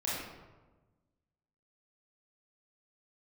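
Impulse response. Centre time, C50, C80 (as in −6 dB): 84 ms, −1.5 dB, 2.0 dB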